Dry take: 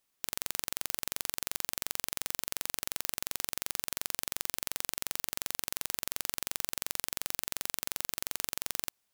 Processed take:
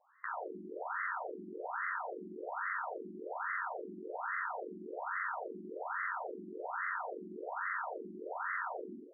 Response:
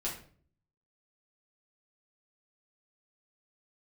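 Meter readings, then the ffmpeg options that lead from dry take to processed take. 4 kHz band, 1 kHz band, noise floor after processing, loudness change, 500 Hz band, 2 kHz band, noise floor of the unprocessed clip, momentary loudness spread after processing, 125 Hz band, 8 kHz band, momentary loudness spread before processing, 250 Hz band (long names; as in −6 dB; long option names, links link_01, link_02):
below −40 dB, +8.5 dB, −51 dBFS, −5.5 dB, +7.5 dB, +4.5 dB, −79 dBFS, 8 LU, can't be measured, below −40 dB, 0 LU, +4.0 dB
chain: -filter_complex "[0:a]aeval=exprs='clip(val(0),-1,0.168)':channel_layout=same[link_01];[1:a]atrim=start_sample=2205,asetrate=23373,aresample=44100[link_02];[link_01][link_02]afir=irnorm=-1:irlink=0,afftfilt=real='re*between(b*sr/1024,270*pow(1500/270,0.5+0.5*sin(2*PI*1.2*pts/sr))/1.41,270*pow(1500/270,0.5+0.5*sin(2*PI*1.2*pts/sr))*1.41)':imag='im*between(b*sr/1024,270*pow(1500/270,0.5+0.5*sin(2*PI*1.2*pts/sr))/1.41,270*pow(1500/270,0.5+0.5*sin(2*PI*1.2*pts/sr))*1.41)':win_size=1024:overlap=0.75,volume=17dB"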